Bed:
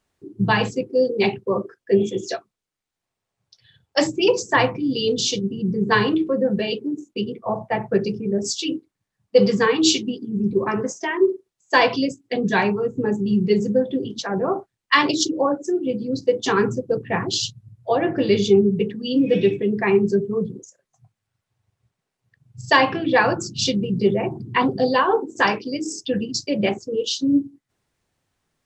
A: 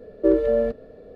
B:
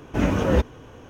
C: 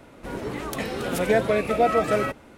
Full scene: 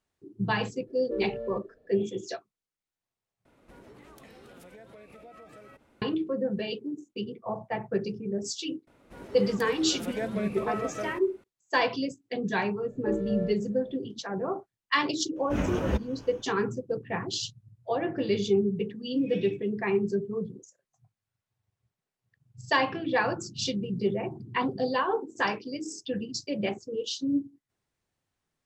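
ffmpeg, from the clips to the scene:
-filter_complex "[1:a]asplit=2[s0][s1];[3:a]asplit=2[s2][s3];[0:a]volume=0.355[s4];[s2]acompressor=threshold=0.0224:ratio=6:attack=3.2:release=140:knee=1:detection=peak[s5];[2:a]dynaudnorm=f=100:g=3:m=3.16[s6];[s4]asplit=2[s7][s8];[s7]atrim=end=3.454[s9];[s5]atrim=end=2.57,asetpts=PTS-STARTPTS,volume=0.188[s10];[s8]atrim=start=6.016[s11];[s0]atrim=end=1.15,asetpts=PTS-STARTPTS,volume=0.141,afade=t=in:d=0.004:c=hsin,afade=t=out:st=1.146:d=0.004:c=hsin,adelay=870[s12];[s3]atrim=end=2.57,asetpts=PTS-STARTPTS,volume=0.237,afade=t=in:d=0.004:c=hsin,afade=t=out:st=2.566:d=0.004:c=hsin,adelay=8870[s13];[s1]atrim=end=1.15,asetpts=PTS-STARTPTS,volume=0.237,afade=t=in:d=0.004:c=hsin,afade=t=out:st=1.146:d=0.004:c=hsin,adelay=12820[s14];[s6]atrim=end=1.09,asetpts=PTS-STARTPTS,volume=0.2,afade=t=in:d=0.004:c=hsin,afade=t=out:st=1.086:d=0.004:c=hsin,adelay=15360[s15];[s9][s10]acrossfade=d=0.004:c1=hsin:c2=hsin[s16];[s16][s11]acrossfade=d=0.004:c1=hsin:c2=hsin[s17];[s17][s12][s13][s14][s15]amix=inputs=5:normalize=0"

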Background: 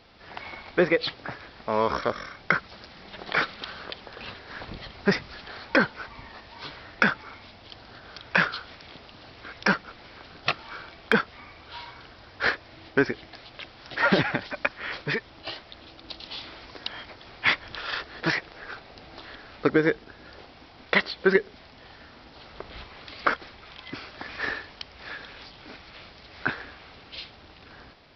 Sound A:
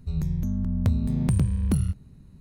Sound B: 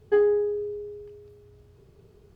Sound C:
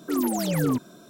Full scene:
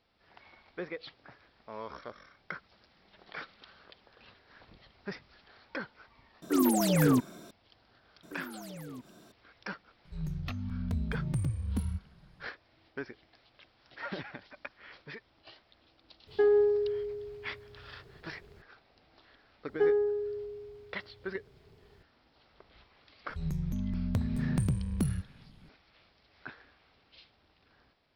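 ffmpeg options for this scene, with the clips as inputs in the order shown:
-filter_complex "[3:a]asplit=2[s0][s1];[1:a]asplit=2[s2][s3];[2:a]asplit=2[s4][s5];[0:a]volume=0.126[s6];[s1]acompressor=threshold=0.02:ratio=6:attack=3.2:release=140:knee=1:detection=peak[s7];[s2]asplit=2[s8][s9];[s9]adelay=2.7,afreqshift=-0.94[s10];[s8][s10]amix=inputs=2:normalize=1[s11];[s4]alimiter=limit=0.133:level=0:latency=1:release=71[s12];[s3]equalizer=f=71:w=1.5:g=-6.5[s13];[s0]atrim=end=1.09,asetpts=PTS-STARTPTS,volume=0.944,afade=t=in:d=0.004:c=hsin,afade=t=out:st=1.086:d=0.004:c=hsin,adelay=283122S[s14];[s7]atrim=end=1.09,asetpts=PTS-STARTPTS,volume=0.422,afade=t=in:d=0.004:c=hsin,afade=t=out:st=1.086:d=0.004:c=hsin,adelay=8230[s15];[s11]atrim=end=2.4,asetpts=PTS-STARTPTS,volume=0.447,afade=t=in:d=0.004:c=hsin,afade=t=out:st=2.396:d=0.004:c=hsin,adelay=10050[s16];[s12]atrim=end=2.35,asetpts=PTS-STARTPTS,volume=0.891,afade=t=in:d=0.004:c=hsin,afade=t=out:st=2.346:d=0.004:c=hsin,adelay=16270[s17];[s5]atrim=end=2.35,asetpts=PTS-STARTPTS,volume=0.531,afade=t=in:d=0.004:c=hsin,afade=t=out:st=2.346:d=0.004:c=hsin,adelay=19680[s18];[s13]atrim=end=2.4,asetpts=PTS-STARTPTS,volume=0.562,afade=t=in:d=0.004:c=hsin,afade=t=out:st=2.396:d=0.004:c=hsin,adelay=23290[s19];[s6][s14][s15][s16][s17][s18][s19]amix=inputs=7:normalize=0"

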